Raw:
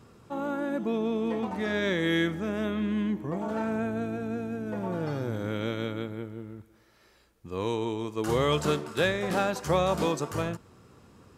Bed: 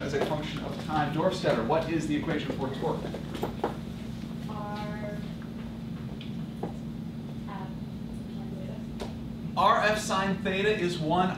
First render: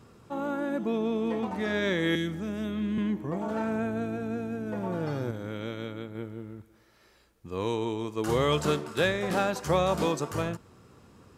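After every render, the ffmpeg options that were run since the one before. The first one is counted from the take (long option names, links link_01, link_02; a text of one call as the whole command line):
ffmpeg -i in.wav -filter_complex "[0:a]asettb=1/sr,asplit=3[link_01][link_02][link_03];[link_01]atrim=end=2.154[link_04];[link_02]atrim=start=2.15:end=2.98,asetpts=PTS-STARTPTS,afade=type=in:duration=0.004:curve=qsin,afade=type=out:start_time=0.826:duration=0.004:curve=qsin,acrossover=split=300|3000[link_05][link_06][link_07];[link_06]acompressor=threshold=-45dB:ratio=2:attack=3.2:release=140:knee=2.83:detection=peak[link_08];[link_05][link_08][link_07]amix=inputs=3:normalize=0[link_09];[link_03]atrim=start=2.976[link_10];[link_04][link_09]acrossfade=duration=0.004:curve1=hsin:curve2=qsin[link_11];[link_11][link_10]acrossfade=duration=0.004:curve1=qsin:curve2=hsin,asplit=3[link_12][link_13][link_14];[link_12]atrim=end=5.312[link_15];[link_13]atrim=start=5.308:end=6.152,asetpts=PTS-STARTPTS,volume=-4.5dB[link_16];[link_14]atrim=start=6.148[link_17];[link_15][link_16]acrossfade=duration=0.004:curve1=hsin:curve2=hsin[link_18];[link_18][link_17]acrossfade=duration=0.004:curve1=hsin:curve2=hsin" out.wav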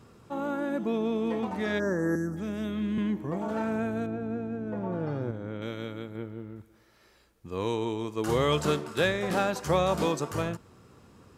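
ffmpeg -i in.wav -filter_complex "[0:a]asplit=3[link_01][link_02][link_03];[link_01]afade=type=out:start_time=1.78:duration=0.02[link_04];[link_02]asuperstop=centerf=2900:order=12:qfactor=0.89,afade=type=in:start_time=1.78:duration=0.02,afade=type=out:start_time=2.36:duration=0.02[link_05];[link_03]afade=type=in:start_time=2.36:duration=0.02[link_06];[link_04][link_05][link_06]amix=inputs=3:normalize=0,asettb=1/sr,asplit=3[link_07][link_08][link_09];[link_07]atrim=end=4.064[link_10];[link_08]atrim=start=4.06:end=5.62,asetpts=PTS-STARTPTS,afade=type=in:duration=0.004:curve=qsin,afade=type=out:start_time=1.556:duration=0.004:curve=qsin,lowpass=frequency=1300:poles=1[link_11];[link_09]atrim=start=5.616[link_12];[link_10][link_11]acrossfade=duration=0.004:curve1=hsin:curve2=qsin[link_13];[link_13][link_12]acrossfade=duration=0.004:curve1=qsin:curve2=hsin,asettb=1/sr,asplit=3[link_14][link_15][link_16];[link_14]atrim=end=6.164[link_17];[link_15]atrim=start=6.16:end=6.56,asetpts=PTS-STARTPTS,afade=type=in:duration=0.004:curve=qsin,afade=type=out:start_time=0.396:duration=0.004:curve=qsin,equalizer=frequency=8900:width_type=o:width=1.5:gain=-8.5[link_18];[link_16]atrim=start=6.556[link_19];[link_17][link_18]acrossfade=duration=0.004:curve1=hsin:curve2=qsin[link_20];[link_20][link_19]acrossfade=duration=0.004:curve1=qsin:curve2=hsin" out.wav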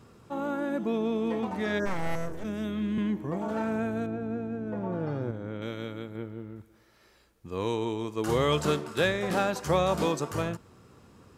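ffmpeg -i in.wav -filter_complex "[0:a]asplit=3[link_01][link_02][link_03];[link_01]afade=type=out:start_time=1.85:duration=0.02[link_04];[link_02]aeval=exprs='abs(val(0))':channel_layout=same,afade=type=in:start_time=1.85:duration=0.02,afade=type=out:start_time=2.43:duration=0.02[link_05];[link_03]afade=type=in:start_time=2.43:duration=0.02[link_06];[link_04][link_05][link_06]amix=inputs=3:normalize=0" out.wav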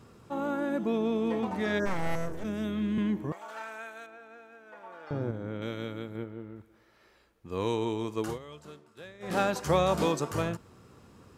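ffmpeg -i in.wav -filter_complex "[0:a]asettb=1/sr,asplit=3[link_01][link_02][link_03];[link_01]atrim=end=3.324[link_04];[link_02]atrim=start=3.32:end=5.11,asetpts=PTS-STARTPTS,afade=type=in:duration=0.004:curve=qsin,afade=type=out:start_time=1.786:duration=0.004:curve=qsin,highpass=1200[link_05];[link_03]atrim=start=5.106[link_06];[link_04][link_05]acrossfade=duration=0.004:curve1=hsin:curve2=qsin[link_07];[link_07][link_06]acrossfade=duration=0.004:curve1=qsin:curve2=hsin,asettb=1/sr,asplit=3[link_08][link_09][link_10];[link_08]atrim=end=6.244[link_11];[link_09]atrim=start=6.24:end=7.5,asetpts=PTS-STARTPTS,afade=type=in:duration=0.004:curve=qsin,afade=type=out:start_time=1.256:duration=0.004:curve=qsin,bass=frequency=250:gain=-4,treble=frequency=4000:gain=-7[link_12];[link_10]atrim=start=7.496[link_13];[link_11][link_12]acrossfade=duration=0.004:curve1=hsin:curve2=qsin[link_14];[link_14][link_13]acrossfade=duration=0.004:curve1=qsin:curve2=hsin,asplit=3[link_15][link_16][link_17];[link_15]atrim=end=8.39,asetpts=PTS-STARTPTS,afade=type=out:start_time=8.18:duration=0.21:silence=0.0841395[link_18];[link_16]atrim=start=8.39:end=9.19,asetpts=PTS-STARTPTS,volume=-21.5dB[link_19];[link_17]atrim=start=9.19,asetpts=PTS-STARTPTS,afade=type=in:duration=0.21:silence=0.0841395[link_20];[link_18][link_19][link_20]concat=n=3:v=0:a=1" out.wav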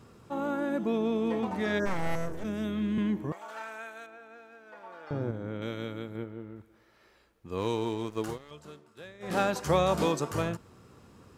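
ffmpeg -i in.wav -filter_complex "[0:a]asettb=1/sr,asplit=3[link_01][link_02][link_03];[link_01]atrim=end=4.354[link_04];[link_02]atrim=start=4.35:end=5,asetpts=PTS-STARTPTS,afade=type=in:duration=0.004:curve=qsin,afade=type=out:start_time=0.646:duration=0.004:curve=qsin,equalizer=frequency=4600:width=3.1:gain=5.5[link_05];[link_03]atrim=start=4.996[link_06];[link_04][link_05]acrossfade=duration=0.004:curve1=hsin:curve2=qsin[link_07];[link_07][link_06]acrossfade=duration=0.004:curve1=qsin:curve2=hsin,asettb=1/sr,asplit=3[link_08][link_09][link_10];[link_08]atrim=end=7.584[link_11];[link_09]atrim=start=7.58:end=8.51,asetpts=PTS-STARTPTS,afade=type=in:duration=0.004:curve=qsin,afade=type=out:start_time=0.926:duration=0.004:curve=qsin,aeval=exprs='sgn(val(0))*max(abs(val(0))-0.00398,0)':channel_layout=same[link_12];[link_10]atrim=start=8.506[link_13];[link_11][link_12]acrossfade=duration=0.004:curve1=hsin:curve2=qsin[link_14];[link_14][link_13]acrossfade=duration=0.004:curve1=qsin:curve2=hsin" out.wav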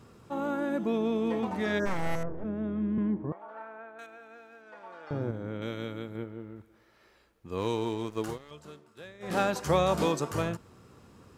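ffmpeg -i in.wav -filter_complex "[0:a]asettb=1/sr,asplit=3[link_01][link_02][link_03];[link_01]atrim=end=2.234[link_04];[link_02]atrim=start=2.23:end=3.99,asetpts=PTS-STARTPTS,afade=type=in:duration=0.004:curve=qsin,afade=type=out:start_time=1.756:duration=0.004:curve=qsin,lowpass=1100[link_05];[link_03]atrim=start=3.986[link_06];[link_04][link_05]acrossfade=duration=0.004:curve1=hsin:curve2=qsin[link_07];[link_07][link_06]acrossfade=duration=0.004:curve1=qsin:curve2=hsin,asettb=1/sr,asplit=3[link_08][link_09][link_10];[link_08]atrim=end=4.614[link_11];[link_09]atrim=start=4.61:end=5.11,asetpts=PTS-STARTPTS,afade=type=in:duration=0.004:curve=qsin,afade=type=out:start_time=0.496:duration=0.004:curve=qsin,lowpass=9600[link_12];[link_10]atrim=start=5.106[link_13];[link_11][link_12]acrossfade=duration=0.004:curve1=hsin:curve2=qsin[link_14];[link_14][link_13]acrossfade=duration=0.004:curve1=qsin:curve2=hsin" out.wav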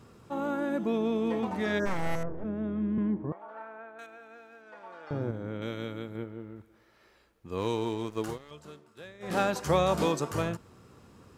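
ffmpeg -i in.wav -af anull out.wav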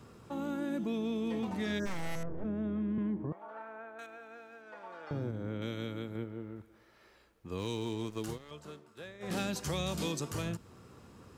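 ffmpeg -i in.wav -filter_complex "[0:a]acrossover=split=320|2400[link_01][link_02][link_03];[link_01]alimiter=level_in=6.5dB:limit=-24dB:level=0:latency=1,volume=-6.5dB[link_04];[link_02]acompressor=threshold=-43dB:ratio=4[link_05];[link_04][link_05][link_03]amix=inputs=3:normalize=0" out.wav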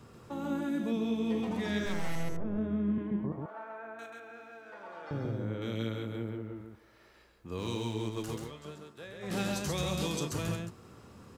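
ffmpeg -i in.wav -af "aecho=1:1:34.99|134.1:0.282|0.708" out.wav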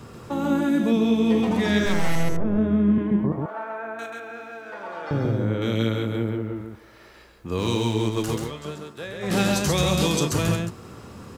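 ffmpeg -i in.wav -af "volume=11.5dB" out.wav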